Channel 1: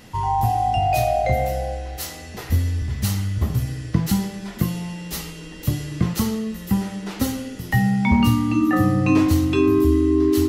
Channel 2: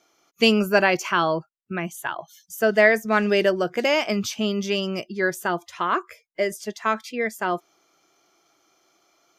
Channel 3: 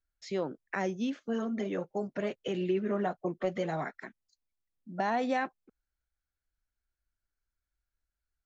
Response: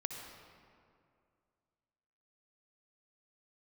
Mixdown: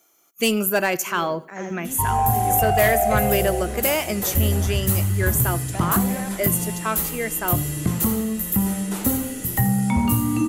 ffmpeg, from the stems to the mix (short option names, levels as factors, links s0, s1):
-filter_complex "[0:a]acrossover=split=1500|3600[s0][s1][s2];[s0]acompressor=threshold=0.141:ratio=4[s3];[s1]acompressor=threshold=0.00562:ratio=4[s4];[s2]acompressor=threshold=0.00708:ratio=4[s5];[s3][s4][s5]amix=inputs=3:normalize=0,adelay=1850,volume=1.26,asplit=2[s6][s7];[s7]volume=0.237[s8];[1:a]volume=0.841,asplit=3[s9][s10][s11];[s10]volume=0.075[s12];[2:a]adelay=750,volume=1.26,asplit=2[s13][s14];[s14]volume=0.501[s15];[s11]apad=whole_len=406036[s16];[s13][s16]sidechaincompress=threshold=0.00891:ratio=8:attack=16:release=222[s17];[s8][s12][s15]amix=inputs=3:normalize=0,aecho=0:1:83|166|249|332|415:1|0.39|0.152|0.0593|0.0231[s18];[s6][s9][s17][s18]amix=inputs=4:normalize=0,asoftclip=type=tanh:threshold=0.316,aexciter=amount=8.6:drive=3.6:freq=7300"